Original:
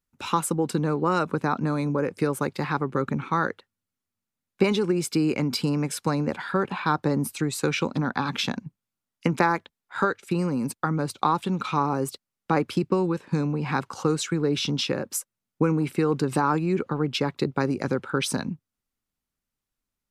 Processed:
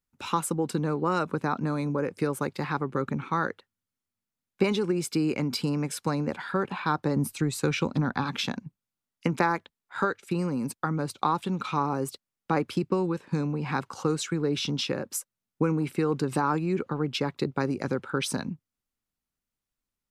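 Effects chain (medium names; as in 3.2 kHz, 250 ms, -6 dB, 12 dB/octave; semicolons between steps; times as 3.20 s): 7.16–8.24 s: bass shelf 130 Hz +9.5 dB; trim -3 dB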